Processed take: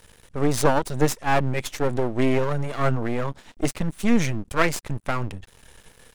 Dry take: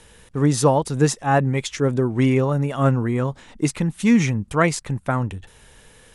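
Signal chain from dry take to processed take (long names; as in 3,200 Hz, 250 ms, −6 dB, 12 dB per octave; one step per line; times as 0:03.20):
half-wave rectification
level +1.5 dB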